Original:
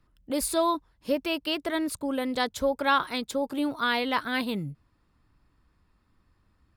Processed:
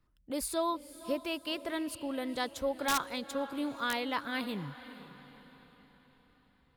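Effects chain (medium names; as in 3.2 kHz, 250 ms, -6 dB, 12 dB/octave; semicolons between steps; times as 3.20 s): echo that smears into a reverb 489 ms, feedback 47%, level -14.5 dB; integer overflow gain 14 dB; trim -7 dB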